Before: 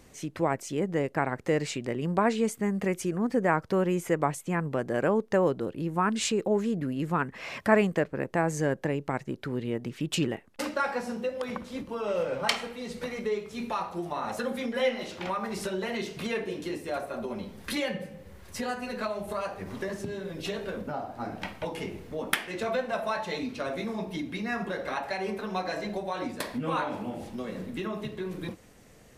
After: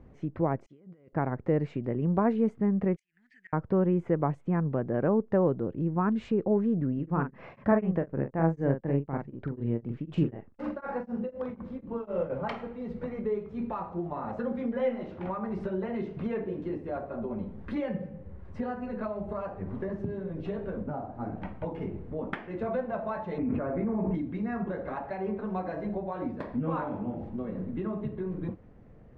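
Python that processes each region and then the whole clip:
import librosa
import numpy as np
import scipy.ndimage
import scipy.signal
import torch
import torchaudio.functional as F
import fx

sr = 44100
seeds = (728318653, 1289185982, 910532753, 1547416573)

y = fx.chain(x, sr, fx.pre_emphasis(coefficient=0.9),
    fx.over_compress(threshold_db=-55.0, ratio=-1.0),
    fx.notch_comb(f0_hz=880.0), at=(0.66, 1.13))
y = fx.chain(y, sr, fx.ellip_highpass(hz=1800.0, order=4, stop_db=40),
    fx.high_shelf(hz=3900.0, db=4.5),
    fx.gate_flip(shuts_db=-29.0, range_db=-25), at=(2.96, 3.53))
y = fx.chain(y, sr, fx.doubler(ms=43.0, db=-5.0),
    fx.tremolo_abs(hz=4.0), at=(6.94, 12.3))
y = fx.chain(y, sr, fx.lowpass(hz=2300.0, slope=24),
    fx.env_flatten(amount_pct=100), at=(23.38, 24.15))
y = scipy.signal.sosfilt(scipy.signal.butter(2, 1300.0, 'lowpass', fs=sr, output='sos'), y)
y = fx.low_shelf(y, sr, hz=270.0, db=10.0)
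y = F.gain(torch.from_numpy(y), -3.5).numpy()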